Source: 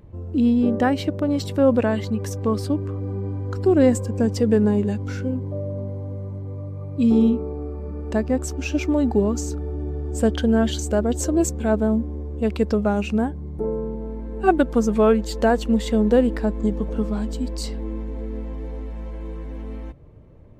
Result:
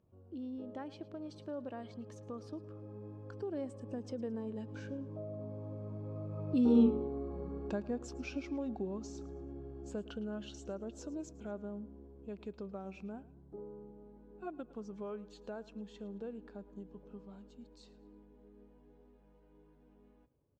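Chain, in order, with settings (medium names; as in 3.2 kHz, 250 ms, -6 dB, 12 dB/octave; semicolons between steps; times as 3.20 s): Doppler pass-by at 6.85 s, 22 m/s, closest 2 m; high-pass 170 Hz 6 dB/octave; peaking EQ 2 kHz -8.5 dB 0.28 oct; compression 2:1, threshold -59 dBFS, peak gain reduction 22 dB; distance through air 100 m; on a send: feedback delay 110 ms, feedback 37%, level -19 dB; on the sum: trim +17 dB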